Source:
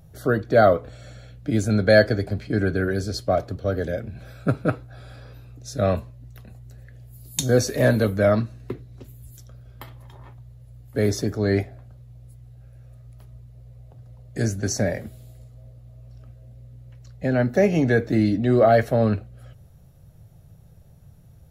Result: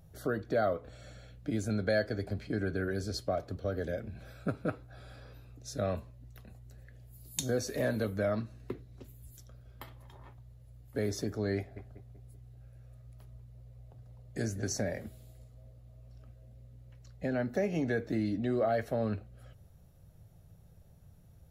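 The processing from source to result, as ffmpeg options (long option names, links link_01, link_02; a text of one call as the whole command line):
ffmpeg -i in.wav -filter_complex "[0:a]asettb=1/sr,asplit=3[link_01][link_02][link_03];[link_01]atrim=end=11.574[link_04];[link_02]atrim=start=11.57:end=14.76,asetpts=PTS-STARTPTS,afade=type=in:duration=0.004:curve=qsin,afade=type=out:start_time=3.186:duration=0.004:curve=qsin,asplit=2[link_05][link_06];[link_06]adelay=192,lowpass=frequency=1500:poles=1,volume=-13dB,asplit=2[link_07][link_08];[link_08]adelay=192,lowpass=frequency=1500:poles=1,volume=0.47,asplit=2[link_09][link_10];[link_10]adelay=192,lowpass=frequency=1500:poles=1,volume=0.47,asplit=2[link_11][link_12];[link_12]adelay=192,lowpass=frequency=1500:poles=1,volume=0.47,asplit=2[link_13][link_14];[link_14]adelay=192,lowpass=frequency=1500:poles=1,volume=0.47[link_15];[link_05][link_07][link_09][link_11][link_13][link_15]amix=inputs=6:normalize=0,atrim=end_sample=140679[link_16];[link_03]atrim=start=14.756[link_17];[link_04][link_16]acrossfade=duration=0.004:curve1=hsin:curve2=qsin[link_18];[link_18][link_17]acrossfade=duration=0.004:curve1=qsin:curve2=hsin,equalizer=frequency=130:width_type=o:width=0.37:gain=-5,acompressor=threshold=-25dB:ratio=2,volume=-6.5dB" out.wav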